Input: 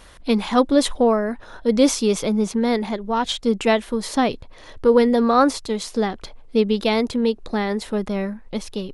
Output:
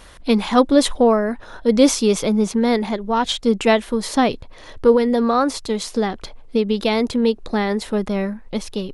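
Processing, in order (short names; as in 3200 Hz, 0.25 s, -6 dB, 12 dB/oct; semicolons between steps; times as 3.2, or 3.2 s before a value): 4.94–7.01 compressor 3:1, threshold -17 dBFS, peak gain reduction 5.5 dB; gain +2.5 dB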